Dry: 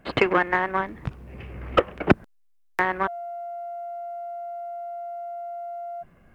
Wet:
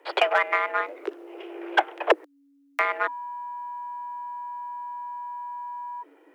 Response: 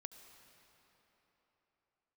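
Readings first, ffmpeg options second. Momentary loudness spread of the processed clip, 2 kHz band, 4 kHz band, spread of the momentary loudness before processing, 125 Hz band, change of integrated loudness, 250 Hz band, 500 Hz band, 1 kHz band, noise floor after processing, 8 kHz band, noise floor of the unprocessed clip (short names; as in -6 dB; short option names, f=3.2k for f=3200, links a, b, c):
14 LU, +0.5 dB, +2.5 dB, 15 LU, under -40 dB, -1.0 dB, -11.0 dB, -2.0 dB, +1.0 dB, -61 dBFS, n/a, -60 dBFS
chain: -af "volume=8dB,asoftclip=hard,volume=-8dB,afreqshift=280,volume=-1dB"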